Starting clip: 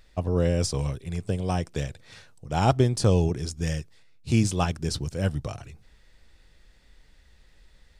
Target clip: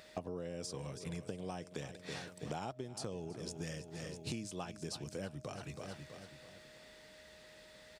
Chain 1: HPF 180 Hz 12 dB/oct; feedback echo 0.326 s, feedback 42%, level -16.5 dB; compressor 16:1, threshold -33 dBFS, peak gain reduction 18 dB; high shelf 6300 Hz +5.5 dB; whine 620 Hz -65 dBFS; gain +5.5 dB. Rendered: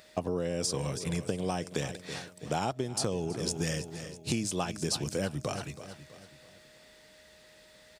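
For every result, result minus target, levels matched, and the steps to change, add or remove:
compressor: peak gain reduction -11 dB; 8000 Hz band +2.5 dB
change: compressor 16:1, threshold -44.5 dBFS, peak gain reduction 29 dB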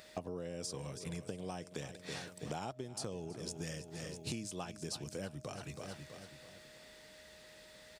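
8000 Hz band +2.5 dB
remove: high shelf 6300 Hz +5.5 dB

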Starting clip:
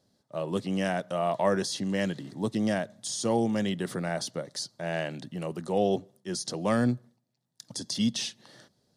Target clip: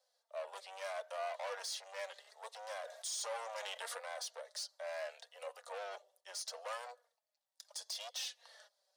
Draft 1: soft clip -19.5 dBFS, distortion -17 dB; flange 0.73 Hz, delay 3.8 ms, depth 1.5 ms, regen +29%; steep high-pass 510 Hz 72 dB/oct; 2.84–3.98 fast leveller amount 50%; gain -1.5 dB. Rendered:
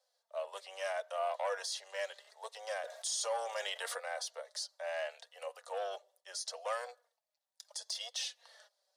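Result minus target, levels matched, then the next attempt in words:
soft clip: distortion -10 dB
soft clip -31 dBFS, distortion -7 dB; flange 0.73 Hz, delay 3.8 ms, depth 1.5 ms, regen +29%; steep high-pass 510 Hz 72 dB/oct; 2.84–3.98 fast leveller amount 50%; gain -1.5 dB

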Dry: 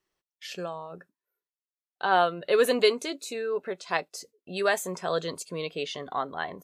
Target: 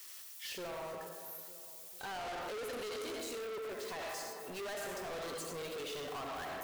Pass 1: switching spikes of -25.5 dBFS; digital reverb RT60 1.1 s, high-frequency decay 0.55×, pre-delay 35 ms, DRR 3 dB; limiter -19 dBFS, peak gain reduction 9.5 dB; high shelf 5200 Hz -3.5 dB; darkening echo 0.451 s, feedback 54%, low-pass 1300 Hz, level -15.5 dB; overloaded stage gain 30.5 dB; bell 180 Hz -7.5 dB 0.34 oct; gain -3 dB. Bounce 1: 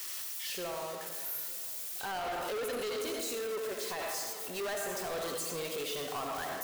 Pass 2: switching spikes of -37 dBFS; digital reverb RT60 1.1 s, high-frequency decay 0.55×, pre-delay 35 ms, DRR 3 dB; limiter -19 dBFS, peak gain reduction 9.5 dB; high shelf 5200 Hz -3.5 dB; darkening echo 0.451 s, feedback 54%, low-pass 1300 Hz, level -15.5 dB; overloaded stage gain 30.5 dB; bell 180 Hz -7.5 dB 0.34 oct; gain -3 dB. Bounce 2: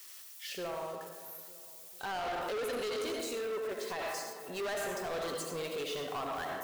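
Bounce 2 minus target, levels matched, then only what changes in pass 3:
overloaded stage: distortion -4 dB
change: overloaded stage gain 37 dB

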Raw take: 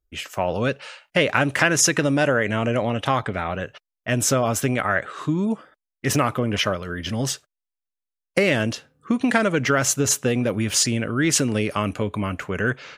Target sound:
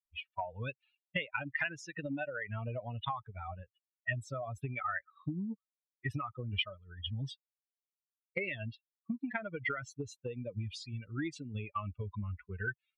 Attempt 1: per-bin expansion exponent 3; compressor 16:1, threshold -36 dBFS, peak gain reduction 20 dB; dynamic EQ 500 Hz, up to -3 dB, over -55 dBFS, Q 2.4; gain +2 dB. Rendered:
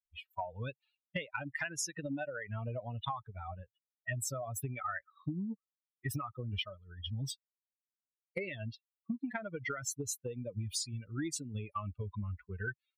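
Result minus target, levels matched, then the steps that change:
2000 Hz band -3.0 dB
add after dynamic EQ: synth low-pass 2700 Hz, resonance Q 1.9

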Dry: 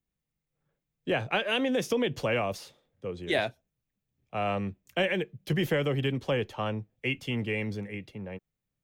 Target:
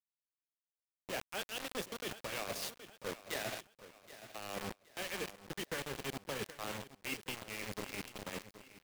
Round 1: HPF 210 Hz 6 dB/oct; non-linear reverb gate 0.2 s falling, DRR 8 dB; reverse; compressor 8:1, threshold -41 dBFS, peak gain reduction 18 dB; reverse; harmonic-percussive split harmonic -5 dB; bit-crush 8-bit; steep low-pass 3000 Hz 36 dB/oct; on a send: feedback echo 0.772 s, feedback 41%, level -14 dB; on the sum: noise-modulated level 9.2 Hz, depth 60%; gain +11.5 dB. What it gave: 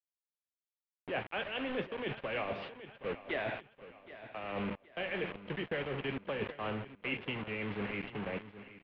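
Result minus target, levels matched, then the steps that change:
compressor: peak gain reduction -5.5 dB; 4000 Hz band -5.0 dB
change: compressor 8:1, threshold -47 dBFS, peak gain reduction 23.5 dB; remove: steep low-pass 3000 Hz 36 dB/oct

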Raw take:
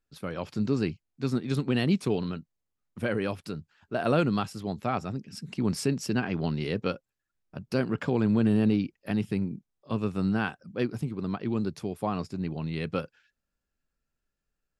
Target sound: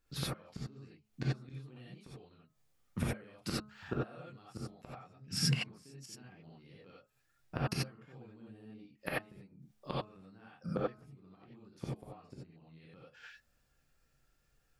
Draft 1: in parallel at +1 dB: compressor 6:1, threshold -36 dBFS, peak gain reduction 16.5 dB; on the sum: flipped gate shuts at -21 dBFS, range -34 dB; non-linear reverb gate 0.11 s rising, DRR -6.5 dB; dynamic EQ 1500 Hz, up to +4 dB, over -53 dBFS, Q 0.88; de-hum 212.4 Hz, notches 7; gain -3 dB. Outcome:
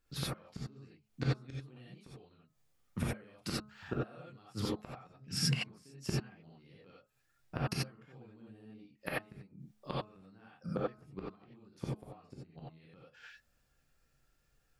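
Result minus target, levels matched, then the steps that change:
compressor: peak gain reduction +6 dB
change: compressor 6:1, threshold -29 dBFS, peak gain reduction 10.5 dB

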